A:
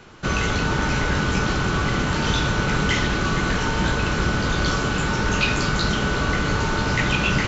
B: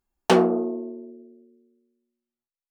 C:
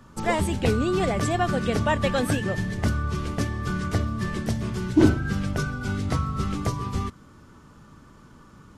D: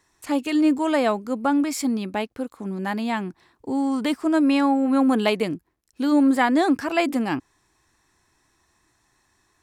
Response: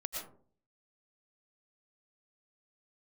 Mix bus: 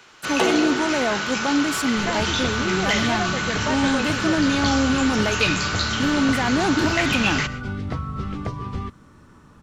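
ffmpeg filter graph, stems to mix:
-filter_complex "[0:a]highpass=f=230:p=1,tiltshelf=f=840:g=-6.5,volume=-5.5dB,asplit=2[a][b];[b]volume=-12dB[c];[1:a]highpass=270,adelay=100,volume=-4.5dB,asplit=2[d][e];[e]volume=-8dB[f];[2:a]lowpass=3.6k,acompressor=threshold=-26dB:ratio=2,adelay=1800,volume=0.5dB[g];[3:a]alimiter=limit=-16dB:level=0:latency=1,volume=0.5dB,asplit=2[h][i];[i]volume=-22.5dB[j];[4:a]atrim=start_sample=2205[k];[c][f][j]amix=inputs=3:normalize=0[l];[l][k]afir=irnorm=-1:irlink=0[m];[a][d][g][h][m]amix=inputs=5:normalize=0"

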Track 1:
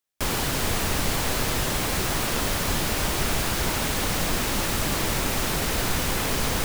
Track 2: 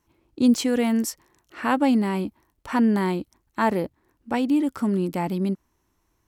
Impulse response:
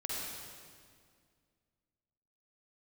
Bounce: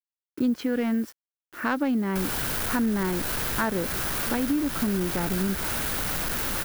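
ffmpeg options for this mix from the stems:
-filter_complex "[0:a]asoftclip=type=tanh:threshold=-26dB,adelay=1950,volume=-1dB[a];[1:a]equalizer=f=840:w=2.2:g=-5,adynamicsmooth=sensitivity=1.5:basefreq=1.8k,acrusher=bits=7:mix=0:aa=0.000001,volume=0.5dB,asplit=2[b][c];[c]apad=whole_len=383518[d];[a][d]sidechaincompress=threshold=-21dB:ratio=8:attack=16:release=561[e];[e][b]amix=inputs=2:normalize=0,equalizer=f=1.5k:t=o:w=0.45:g=6.5,aexciter=amount=2.8:drive=1.2:freq=10k,acompressor=threshold=-23dB:ratio=3"

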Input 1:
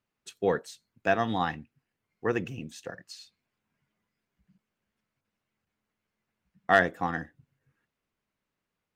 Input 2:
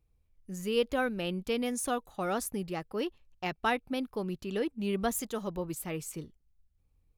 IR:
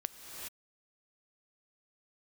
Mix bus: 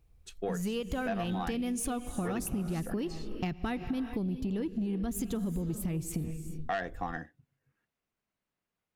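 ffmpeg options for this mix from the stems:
-filter_complex "[0:a]volume=-4dB[a];[1:a]asubboost=boost=9:cutoff=240,acompressor=threshold=-31dB:ratio=6,volume=2.5dB,asplit=2[b][c];[c]volume=-4dB[d];[2:a]atrim=start_sample=2205[e];[d][e]afir=irnorm=-1:irlink=0[f];[a][b][f]amix=inputs=3:normalize=0,equalizer=f=710:w=7.3:g=4.5,asoftclip=type=tanh:threshold=-17dB,acompressor=threshold=-30dB:ratio=6"

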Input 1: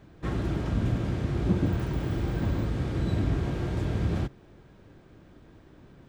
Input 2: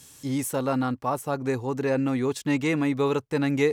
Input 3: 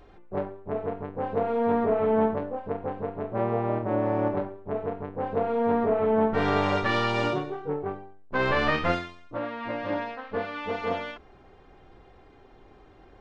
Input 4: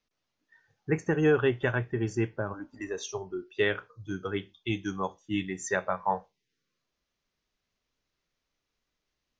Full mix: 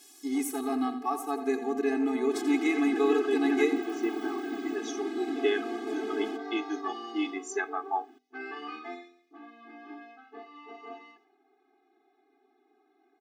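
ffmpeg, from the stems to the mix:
-filter_complex "[0:a]adelay=2100,volume=1.5dB[a];[1:a]volume=-1dB,asplit=3[b][c][d];[c]volume=-11.5dB[e];[2:a]volume=-11.5dB,asplit=2[f][g];[g]volume=-18.5dB[h];[3:a]adelay=1850,volume=1.5dB[i];[d]apad=whole_len=495821[j];[i][j]sidechaincompress=threshold=-26dB:ratio=8:attack=16:release=856[k];[e][h]amix=inputs=2:normalize=0,aecho=0:1:86|172|258|344|430|516:1|0.41|0.168|0.0689|0.0283|0.0116[l];[a][b][f][k][l]amix=inputs=5:normalize=0,bandreject=f=50:t=h:w=6,bandreject=f=100:t=h:w=6,bandreject=f=150:t=h:w=6,bandreject=f=200:t=h:w=6,bandreject=f=250:t=h:w=6,afftfilt=real='re*eq(mod(floor(b*sr/1024/220),2),1)':imag='im*eq(mod(floor(b*sr/1024/220),2),1)':win_size=1024:overlap=0.75"

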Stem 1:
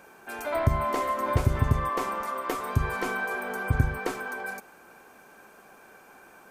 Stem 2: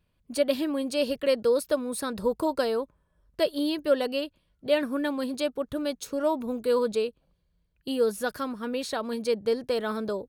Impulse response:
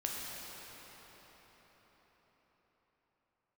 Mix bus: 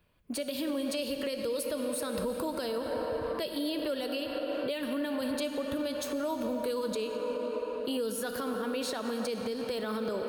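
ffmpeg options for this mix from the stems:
-filter_complex "[0:a]adelay=1500,volume=-15dB[a];[1:a]highshelf=f=8.6k:g=12,volume=3dB,asplit=3[b][c][d];[c]volume=-5.5dB[e];[d]apad=whole_len=352917[f];[a][f]sidechaincompress=threshold=-36dB:ratio=8:attack=16:release=488[g];[2:a]atrim=start_sample=2205[h];[e][h]afir=irnorm=-1:irlink=0[i];[g][b][i]amix=inputs=3:normalize=0,bass=f=250:g=-6,treble=f=4k:g=-10,acrossover=split=210|3000[j][k][l];[k]acompressor=threshold=-28dB:ratio=6[m];[j][m][l]amix=inputs=3:normalize=0,alimiter=level_in=0.5dB:limit=-24dB:level=0:latency=1:release=74,volume=-0.5dB"

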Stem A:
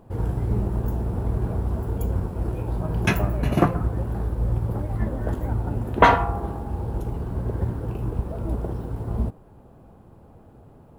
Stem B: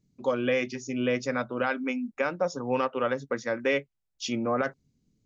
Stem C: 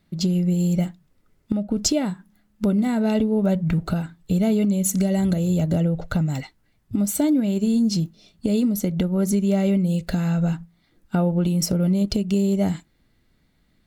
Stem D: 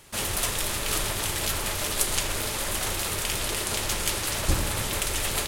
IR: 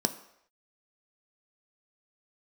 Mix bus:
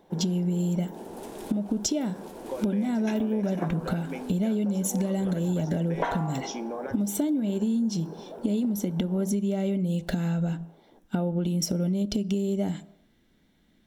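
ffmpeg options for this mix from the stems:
-filter_complex "[0:a]highpass=410,volume=-10.5dB,asplit=2[a][b];[b]volume=-7.5dB[c];[1:a]highpass=340,acompressor=threshold=-30dB:ratio=6,adelay=2250,volume=-11dB,asplit=2[d][e];[e]volume=-3.5dB[f];[2:a]equalizer=f=3.2k:t=o:w=0.38:g=5,volume=-2.5dB,asplit=3[g][h][i];[h]volume=-14.5dB[j];[3:a]adelay=800,volume=-18.5dB[k];[i]apad=whole_len=276607[l];[k][l]sidechaincompress=threshold=-34dB:ratio=8:attack=16:release=677[m];[4:a]atrim=start_sample=2205[n];[c][f][j]amix=inputs=3:normalize=0[o];[o][n]afir=irnorm=-1:irlink=0[p];[a][d][g][m][p]amix=inputs=5:normalize=0,acompressor=threshold=-24dB:ratio=6"

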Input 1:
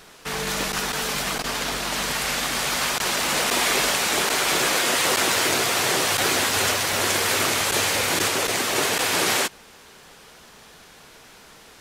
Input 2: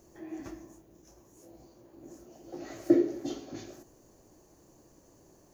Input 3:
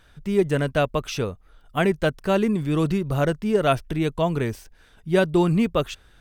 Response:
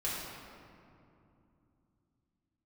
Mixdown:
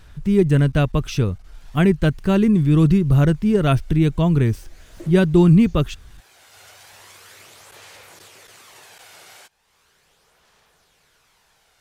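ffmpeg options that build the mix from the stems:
-filter_complex "[0:a]acompressor=threshold=-39dB:ratio=2,aphaser=in_gain=1:out_gain=1:delay=1.4:decay=0.32:speed=0.38:type=sinusoidal,volume=-13dB[a];[1:a]highshelf=f=4.2k:g=9.5,adelay=2100,volume=-12.5dB[b];[2:a]lowshelf=f=390:t=q:w=1.5:g=11.5,volume=0.5dB,asplit=2[c][d];[d]apad=whole_len=520650[e];[a][e]sidechaincompress=threshold=-29dB:ratio=4:attack=16:release=638[f];[f][b][c]amix=inputs=3:normalize=0,equalizer=f=250:w=1.3:g=-9"

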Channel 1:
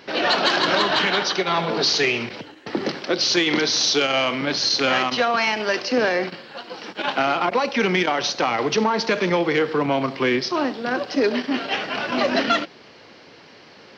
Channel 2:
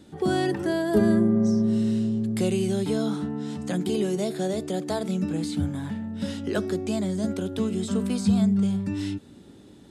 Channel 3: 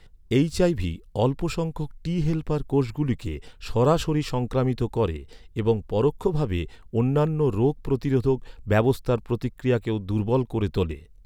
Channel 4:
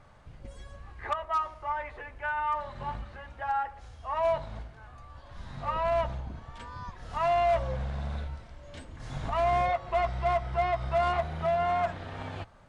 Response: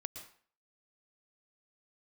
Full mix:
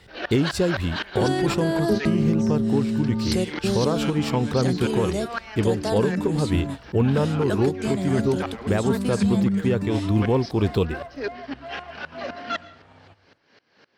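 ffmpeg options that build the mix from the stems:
-filter_complex "[0:a]equalizer=f=1.6k:w=5.2:g=7,aeval=exprs='val(0)*pow(10,-24*if(lt(mod(-3.9*n/s,1),2*abs(-3.9)/1000),1-mod(-3.9*n/s,1)/(2*abs(-3.9)/1000),(mod(-3.9*n/s,1)-2*abs(-3.9)/1000)/(1-2*abs(-3.9)/1000))/20)':c=same,volume=-9dB,asplit=2[a][b];[b]volume=-7dB[c];[1:a]adelay=950,volume=2.5dB[d];[2:a]acontrast=49,volume=-0.5dB,asplit=2[e][f];[3:a]adelay=700,volume=-14dB,asplit=2[g][h];[h]volume=-9.5dB[i];[f]apad=whole_len=478499[j];[d][j]sidechaingate=range=-33dB:threshold=-32dB:ratio=16:detection=peak[k];[e][g]amix=inputs=2:normalize=0,highpass=70,alimiter=limit=-11.5dB:level=0:latency=1:release=414,volume=0dB[l];[4:a]atrim=start_sample=2205[m];[c][i]amix=inputs=2:normalize=0[n];[n][m]afir=irnorm=-1:irlink=0[o];[a][k][l][o]amix=inputs=4:normalize=0,alimiter=limit=-11.5dB:level=0:latency=1:release=336"

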